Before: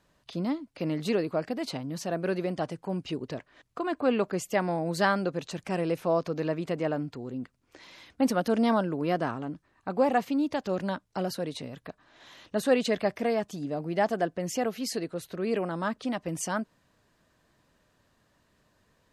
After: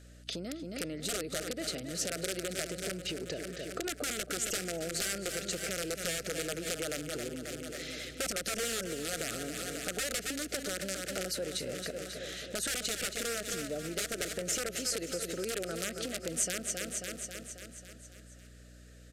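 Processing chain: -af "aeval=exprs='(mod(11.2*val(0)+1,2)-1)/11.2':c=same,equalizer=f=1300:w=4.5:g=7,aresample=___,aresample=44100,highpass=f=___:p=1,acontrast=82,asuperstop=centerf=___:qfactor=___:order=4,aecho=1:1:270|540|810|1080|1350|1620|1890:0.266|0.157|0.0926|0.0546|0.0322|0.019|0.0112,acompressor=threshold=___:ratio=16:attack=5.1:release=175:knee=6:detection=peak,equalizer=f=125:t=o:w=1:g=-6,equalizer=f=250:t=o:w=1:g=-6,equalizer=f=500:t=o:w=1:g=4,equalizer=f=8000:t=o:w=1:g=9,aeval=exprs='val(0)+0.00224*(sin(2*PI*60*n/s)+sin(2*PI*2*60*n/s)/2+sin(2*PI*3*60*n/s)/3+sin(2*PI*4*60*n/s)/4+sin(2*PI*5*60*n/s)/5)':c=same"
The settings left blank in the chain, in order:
32000, 51, 970, 1.1, -32dB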